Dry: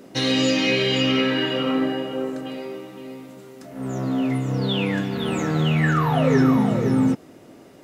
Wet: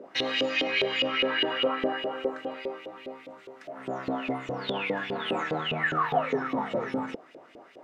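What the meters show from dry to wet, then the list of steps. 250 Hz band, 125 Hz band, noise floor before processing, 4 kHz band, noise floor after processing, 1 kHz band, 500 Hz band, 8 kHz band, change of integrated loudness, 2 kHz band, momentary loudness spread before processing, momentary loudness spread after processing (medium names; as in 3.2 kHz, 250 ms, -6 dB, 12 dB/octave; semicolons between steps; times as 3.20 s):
-13.5 dB, -19.5 dB, -47 dBFS, -4.5 dB, -53 dBFS, -2.0 dB, -5.0 dB, under -15 dB, -7.5 dB, -2.5 dB, 15 LU, 16 LU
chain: peak limiter -15.5 dBFS, peak gain reduction 8 dB; LFO band-pass saw up 4.9 Hz 460–3200 Hz; trim +6.5 dB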